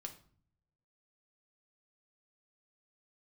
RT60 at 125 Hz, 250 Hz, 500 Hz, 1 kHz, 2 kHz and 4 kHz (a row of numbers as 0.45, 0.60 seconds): 1.3, 0.90, 0.55, 0.50, 0.40, 0.35 seconds